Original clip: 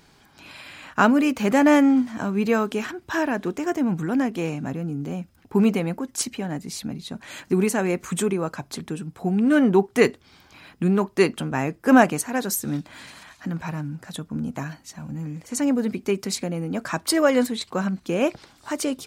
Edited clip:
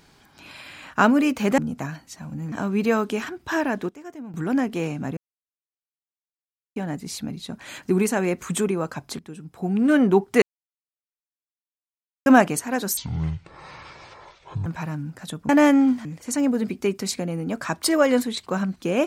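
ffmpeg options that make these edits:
-filter_complex "[0:a]asplit=14[a][b][c][d][e][f][g][h][i][j][k][l][m][n];[a]atrim=end=1.582[o];[b]atrim=start=14.348:end=15.292[p];[c]atrim=start=2.138:end=3.51,asetpts=PTS-STARTPTS,afade=t=out:st=1.172:d=0.2:c=log:silence=0.188365[q];[d]atrim=start=3.51:end=3.96,asetpts=PTS-STARTPTS,volume=-14.5dB[r];[e]atrim=start=3.96:end=4.79,asetpts=PTS-STARTPTS,afade=t=in:d=0.2:c=log:silence=0.188365,afade=t=out:st=0.826:d=0.004:c=hsin[s];[f]atrim=start=4.79:end=6.38,asetpts=PTS-STARTPTS,volume=0[t];[g]atrim=start=6.38:end=8.81,asetpts=PTS-STARTPTS,afade=t=in:d=0.004:c=hsin,afade=t=out:st=2.426:d=0.004:c=hsin:silence=0.237137[u];[h]atrim=start=8.81:end=10.04,asetpts=PTS-STARTPTS,afade=t=in:d=0.67:silence=0.237137,afade=t=out:st=1.226:d=0.004:c=hsin[v];[i]atrim=start=10.04:end=11.88,asetpts=PTS-STARTPTS,volume=0[w];[j]atrim=start=11.88:end=12.594,asetpts=PTS-STARTPTS,afade=t=in:d=0.004:c=hsin[x];[k]atrim=start=12.59:end=13.52,asetpts=PTS-STARTPTS,asetrate=24255,aresample=44100,atrim=end_sample=74569,asetpts=PTS-STARTPTS[y];[l]atrim=start=13.516:end=14.352[z];[m]atrim=start=1.578:end=2.142[aa];[n]atrim=start=15.288[ab];[o][p]acrossfade=d=0.004:c1=hsin:c2=hsin[ac];[q][r][s][t][u][v][w][x]concat=n=8:v=0:a=1[ad];[ac][ad]acrossfade=d=0.004:c1=hsin:c2=hsin[ae];[ae][y]acrossfade=d=0.004:c1=hsin:c2=hsin[af];[af][z]acrossfade=d=0.004:c1=hsin:c2=hsin[ag];[ag][aa]acrossfade=d=0.004:c1=hsin:c2=hsin[ah];[ah][ab]acrossfade=d=0.004:c1=hsin:c2=hsin"

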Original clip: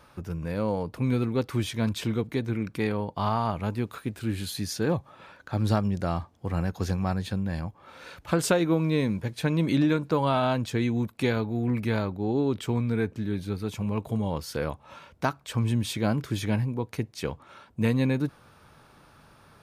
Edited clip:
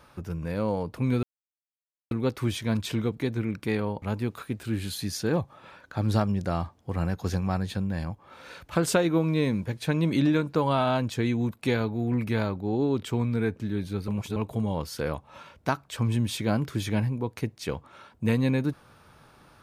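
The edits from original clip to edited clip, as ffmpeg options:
-filter_complex "[0:a]asplit=5[a][b][c][d][e];[a]atrim=end=1.23,asetpts=PTS-STARTPTS,afade=t=out:st=1.226:d=0.004:c=hsin,apad=pad_dur=0.88[f];[b]atrim=start=1.23:end=3.142,asetpts=PTS-STARTPTS,afade=t=in:d=0.004:c=hsin[g];[c]atrim=start=3.578:end=13.642[h];[d]atrim=start=13.638:end=13.922,asetpts=PTS-STARTPTS,areverse[i];[e]atrim=start=13.918[j];[f][g]concat=n=2:v=0:a=1[k];[k][h]acrossfade=d=0.004:c1=hsin:c2=hsin[l];[l][i]acrossfade=d=0.004:c1=hsin:c2=hsin[m];[m][j]acrossfade=d=0.004:c1=hsin:c2=hsin"

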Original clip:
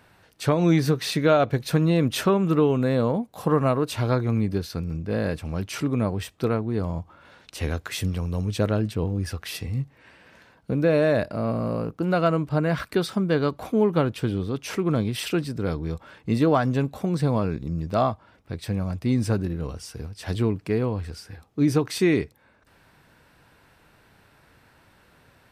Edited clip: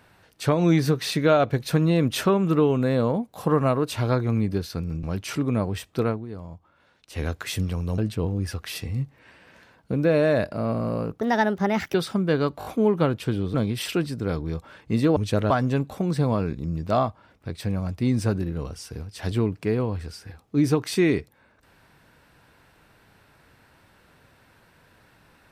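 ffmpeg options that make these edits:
-filter_complex "[0:a]asplit=13[a][b][c][d][e][f][g][h][i][j][k][l][m];[a]atrim=end=5.032[n];[b]atrim=start=5.478:end=6.71,asetpts=PTS-STARTPTS,afade=t=out:st=1.062:d=0.17:silence=0.298538[o];[c]atrim=start=6.71:end=7.53,asetpts=PTS-STARTPTS,volume=-10.5dB[p];[d]atrim=start=7.53:end=8.432,asetpts=PTS-STARTPTS,afade=t=in:d=0.17:silence=0.298538[q];[e]atrim=start=8.768:end=12.004[r];[f]atrim=start=12:end=12.96,asetpts=PTS-STARTPTS,asetrate=57771,aresample=44100[s];[g]atrim=start=12.956:end=13.632[t];[h]atrim=start=13.608:end=13.632[u];[i]atrim=start=13.608:end=13.632[v];[j]atrim=start=13.608:end=14.502[w];[k]atrim=start=14.918:end=16.542[x];[l]atrim=start=8.428:end=8.772[y];[m]atrim=start=16.538[z];[o][p][q]concat=n=3:v=0:a=1[aa];[n][aa]acrossfade=d=0.004:c1=hsin:c2=hsin[ab];[ab][r]acrossfade=d=0.004:c1=hsin:c2=hsin[ac];[ac][s]acrossfade=d=0.004:c1=hsin:c2=hsin[ad];[ad][t]acrossfade=d=0.004:c1=hsin:c2=hsin[ae];[ae][u]acrossfade=d=0.004:c1=hsin:c2=hsin[af];[af][v]acrossfade=d=0.004:c1=hsin:c2=hsin[ag];[ag][w]acrossfade=d=0.004:c1=hsin:c2=hsin[ah];[ah][x]acrossfade=d=0.004:c1=hsin:c2=hsin[ai];[ai][y]acrossfade=d=0.004:c1=hsin:c2=hsin[aj];[aj][z]acrossfade=d=0.004:c1=hsin:c2=hsin"

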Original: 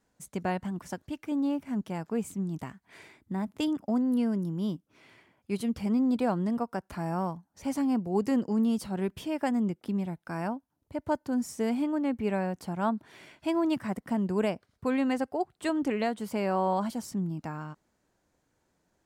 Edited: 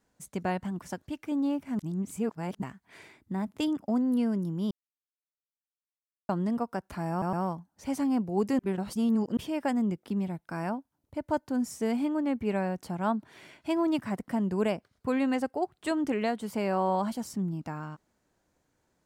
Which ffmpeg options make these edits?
-filter_complex "[0:a]asplit=9[a][b][c][d][e][f][g][h][i];[a]atrim=end=1.792[j];[b]atrim=start=1.788:end=2.622,asetpts=PTS-STARTPTS,areverse[k];[c]atrim=start=2.618:end=4.71,asetpts=PTS-STARTPTS,afade=t=out:st=2.088:d=0.004:c=hsin[l];[d]atrim=start=4.71:end=6.29,asetpts=PTS-STARTPTS,volume=0[m];[e]atrim=start=6.29:end=7.222,asetpts=PTS-STARTPTS,afade=t=in:d=0.004:c=hsin[n];[f]atrim=start=7.108:end=7.222[o];[g]atrim=start=7.108:end=8.372[p];[h]atrim=start=8.368:end=9.152,asetpts=PTS-STARTPTS,areverse[q];[i]atrim=start=9.148[r];[j][k]acrossfade=d=0.004:c1=hsin:c2=hsin[s];[l][m][n]concat=n=3:v=0:a=1[t];[s][t]acrossfade=d=0.004:c1=hsin:c2=hsin[u];[u][o]acrossfade=d=0.004:c1=hsin:c2=hsin[v];[v][p]acrossfade=d=0.004:c1=hsin:c2=hsin[w];[w][q]acrossfade=d=0.004:c1=hsin:c2=hsin[x];[x][r]acrossfade=d=0.004:c1=hsin:c2=hsin"

